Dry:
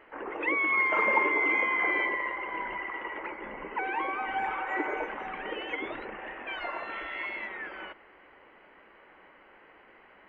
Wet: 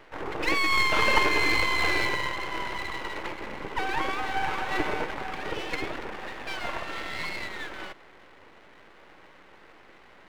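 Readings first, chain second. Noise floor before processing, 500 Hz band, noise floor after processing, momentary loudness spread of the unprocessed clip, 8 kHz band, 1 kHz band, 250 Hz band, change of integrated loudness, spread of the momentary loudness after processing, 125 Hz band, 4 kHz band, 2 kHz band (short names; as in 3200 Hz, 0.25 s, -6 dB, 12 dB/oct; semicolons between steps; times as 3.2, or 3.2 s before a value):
-57 dBFS, +2.0 dB, -53 dBFS, 15 LU, n/a, +2.0 dB, +3.5 dB, +2.0 dB, 15 LU, +18.5 dB, +14.0 dB, +1.0 dB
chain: low shelf 450 Hz +4 dB; half-wave rectifier; gain +6 dB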